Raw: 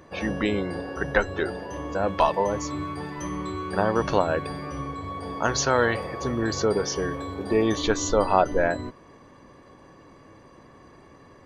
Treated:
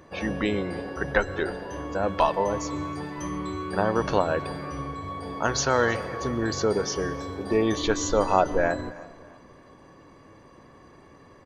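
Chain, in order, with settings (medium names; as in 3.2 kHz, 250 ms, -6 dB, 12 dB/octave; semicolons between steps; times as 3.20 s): feedback delay 318 ms, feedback 38%, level -22 dB; on a send at -18 dB: reverberation RT60 1.7 s, pre-delay 106 ms; on the sum: trim -1 dB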